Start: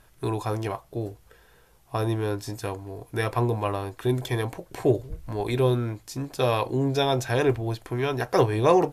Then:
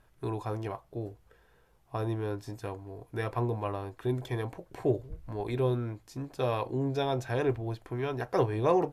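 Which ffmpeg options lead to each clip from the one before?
ffmpeg -i in.wav -af "highshelf=frequency=3100:gain=-9,volume=-6dB" out.wav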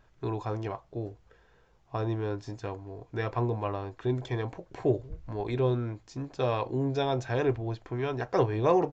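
ffmpeg -i in.wav -af "aresample=16000,aresample=44100,volume=1.5dB" out.wav

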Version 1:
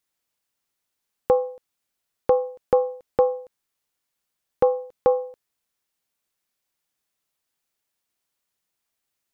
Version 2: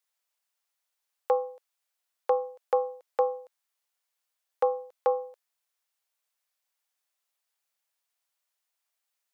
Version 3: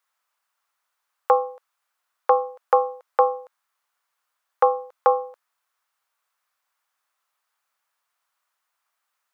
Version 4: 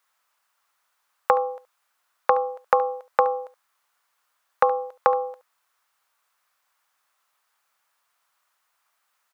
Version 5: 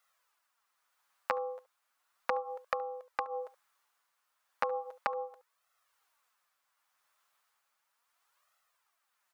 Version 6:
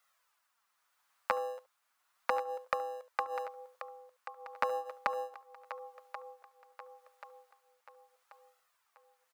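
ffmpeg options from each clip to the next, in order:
ffmpeg -i in.wav -af "highpass=frequency=540:width=0.5412,highpass=frequency=540:width=1.3066,volume=-2.5dB" out.wav
ffmpeg -i in.wav -af "equalizer=frequency=1200:width_type=o:width=1.4:gain=14,volume=1.5dB" out.wav
ffmpeg -i in.wav -af "acompressor=threshold=-21dB:ratio=6,aecho=1:1:71:0.141,volume=5.5dB" out.wav
ffmpeg -i in.wav -af "acompressor=threshold=-26dB:ratio=6,flanger=delay=1.5:depth=8.1:regen=-2:speed=0.35:shape=sinusoidal,tremolo=f=0.83:d=0.37" out.wav
ffmpeg -i in.wav -filter_complex "[0:a]acrossover=split=350[link_01][link_02];[link_01]acrusher=samples=39:mix=1:aa=0.000001[link_03];[link_02]aecho=1:1:1084|2168|3252|4336:0.251|0.111|0.0486|0.0214[link_04];[link_03][link_04]amix=inputs=2:normalize=0,volume=1dB" out.wav

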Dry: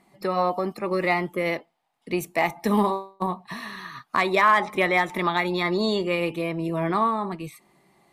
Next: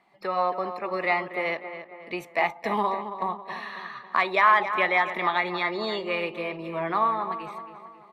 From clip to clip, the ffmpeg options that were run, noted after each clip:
ffmpeg -i in.wav -filter_complex "[0:a]acrossover=split=500 4300:gain=0.251 1 0.126[link_01][link_02][link_03];[link_01][link_02][link_03]amix=inputs=3:normalize=0,asplit=2[link_04][link_05];[link_05]adelay=273,lowpass=frequency=2700:poles=1,volume=-10dB,asplit=2[link_06][link_07];[link_07]adelay=273,lowpass=frequency=2700:poles=1,volume=0.5,asplit=2[link_08][link_09];[link_09]adelay=273,lowpass=frequency=2700:poles=1,volume=0.5,asplit=2[link_10][link_11];[link_11]adelay=273,lowpass=frequency=2700:poles=1,volume=0.5,asplit=2[link_12][link_13];[link_13]adelay=273,lowpass=frequency=2700:poles=1,volume=0.5[link_14];[link_04][link_06][link_08][link_10][link_12][link_14]amix=inputs=6:normalize=0" out.wav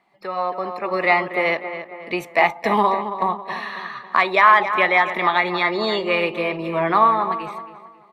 ffmpeg -i in.wav -af "dynaudnorm=framelen=220:gausssize=7:maxgain=9.5dB" out.wav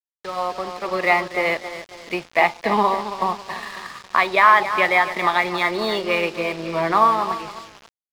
ffmpeg -i in.wav -af "aresample=11025,acrusher=bits=5:mix=0:aa=0.000001,aresample=44100,aeval=exprs='sgn(val(0))*max(abs(val(0))-0.0141,0)':channel_layout=same" out.wav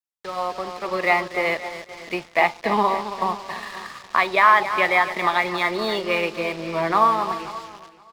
ffmpeg -i in.wav -af "aecho=1:1:522|1044:0.112|0.018,volume=-1.5dB" out.wav

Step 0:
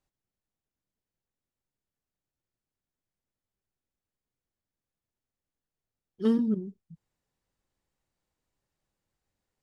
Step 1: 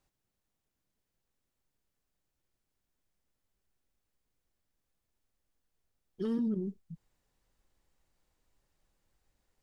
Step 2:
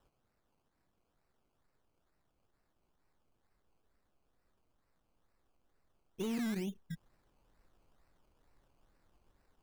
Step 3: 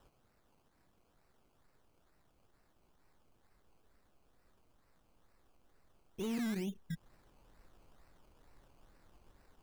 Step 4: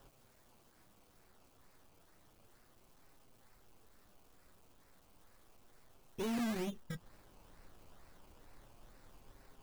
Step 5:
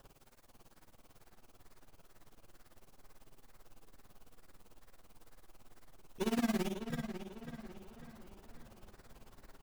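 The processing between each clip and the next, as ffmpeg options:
ffmpeg -i in.wav -af "acompressor=threshold=-28dB:ratio=6,asubboost=boost=2.5:cutoff=60,alimiter=level_in=7.5dB:limit=-24dB:level=0:latency=1:release=18,volume=-7.5dB,volume=5dB" out.wav
ffmpeg -i in.wav -af "asoftclip=type=tanh:threshold=-31dB,acompressor=threshold=-44dB:ratio=2,acrusher=samples=19:mix=1:aa=0.000001:lfo=1:lforange=11.4:lforate=2.2,volume=5dB" out.wav
ffmpeg -i in.wav -af "alimiter=level_in=16dB:limit=-24dB:level=0:latency=1:release=200,volume=-16dB,volume=7dB" out.wav
ffmpeg -i in.wav -af "asoftclip=type=hard:threshold=-38.5dB,acrusher=bits=11:mix=0:aa=0.000001,flanger=delay=7.4:depth=3.6:regen=-43:speed=0.32:shape=sinusoidal,volume=8dB" out.wav
ffmpeg -i in.wav -filter_complex "[0:a]asplit=2[link_01][link_02];[link_02]aecho=0:1:55.39|87.46:0.501|0.282[link_03];[link_01][link_03]amix=inputs=2:normalize=0,tremolo=f=18:d=0.92,asplit=2[link_04][link_05];[link_05]adelay=547,lowpass=frequency=4400:poles=1,volume=-9dB,asplit=2[link_06][link_07];[link_07]adelay=547,lowpass=frequency=4400:poles=1,volume=0.44,asplit=2[link_08][link_09];[link_09]adelay=547,lowpass=frequency=4400:poles=1,volume=0.44,asplit=2[link_10][link_11];[link_11]adelay=547,lowpass=frequency=4400:poles=1,volume=0.44,asplit=2[link_12][link_13];[link_13]adelay=547,lowpass=frequency=4400:poles=1,volume=0.44[link_14];[link_06][link_08][link_10][link_12][link_14]amix=inputs=5:normalize=0[link_15];[link_04][link_15]amix=inputs=2:normalize=0,volume=5.5dB" out.wav

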